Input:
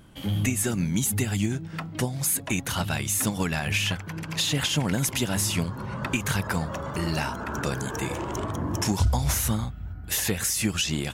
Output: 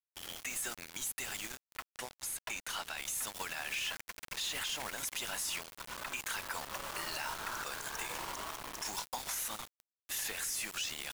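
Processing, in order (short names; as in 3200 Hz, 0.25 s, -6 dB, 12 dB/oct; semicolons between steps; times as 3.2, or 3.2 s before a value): HPF 880 Hz 12 dB/oct; added noise pink -49 dBFS; requantised 6-bit, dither none; limiter -23.5 dBFS, peak gain reduction 10 dB; 1.91–2.97 high shelf 12000 Hz -8 dB; gain -4.5 dB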